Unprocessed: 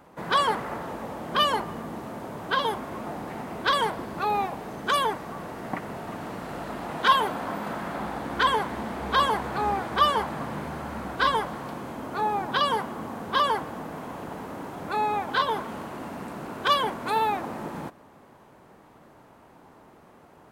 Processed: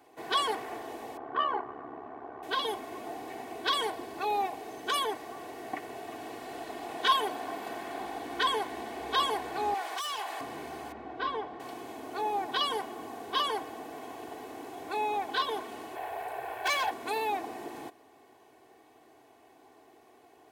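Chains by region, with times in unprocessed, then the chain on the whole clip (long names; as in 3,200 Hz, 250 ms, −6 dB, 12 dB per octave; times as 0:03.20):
0:01.17–0:02.43: low-pass with resonance 1,300 Hz, resonance Q 2.2 + ring modulation 35 Hz
0:09.74–0:10.41: high-pass filter 730 Hz + hard clipping −27.5 dBFS + envelope flattener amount 50%
0:10.92–0:11.60: head-to-tape spacing loss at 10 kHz 31 dB + flutter between parallel walls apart 11.6 metres, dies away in 0.23 s
0:15.95–0:16.91: lower of the sound and its delayed copy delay 1.2 ms + drawn EQ curve 130 Hz 0 dB, 230 Hz −16 dB, 420 Hz +9 dB, 2,000 Hz +6 dB, 3,000 Hz 0 dB, 5,800 Hz −9 dB, 15,000 Hz +5 dB + hard clipping −20 dBFS
whole clip: high-pass filter 470 Hz 6 dB per octave; parametric band 1,300 Hz −11.5 dB 0.59 octaves; comb filter 2.7 ms, depth 76%; level −3 dB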